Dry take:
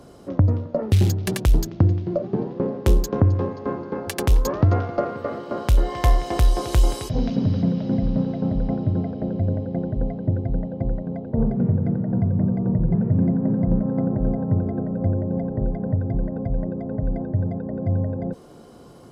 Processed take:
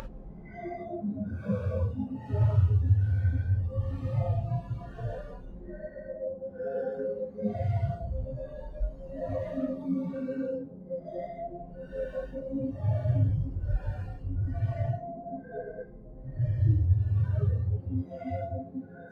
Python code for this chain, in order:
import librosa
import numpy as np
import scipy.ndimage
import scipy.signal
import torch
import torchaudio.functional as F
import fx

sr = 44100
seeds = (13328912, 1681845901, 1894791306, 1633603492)

y = fx.reverse_delay(x, sr, ms=662, wet_db=-6.0)
y = np.clip(10.0 ** (20.5 / 20.0) * y, -1.0, 1.0) / 10.0 ** (20.5 / 20.0)
y = fx.paulstretch(y, sr, seeds[0], factor=10.0, window_s=0.1, from_s=15.69)
y = fx.noise_reduce_blind(y, sr, reduce_db=19)